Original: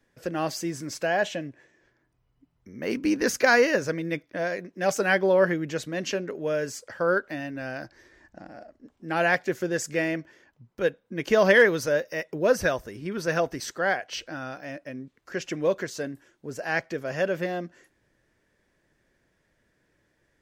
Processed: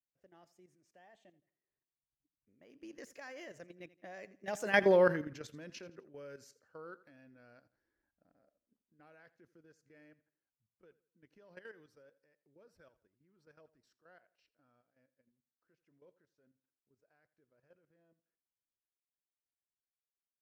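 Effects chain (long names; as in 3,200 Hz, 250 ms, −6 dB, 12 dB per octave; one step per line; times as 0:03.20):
source passing by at 0:04.90, 25 m/s, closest 3.8 metres
output level in coarse steps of 12 dB
repeating echo 84 ms, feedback 35%, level −18 dB
one half of a high-frequency compander decoder only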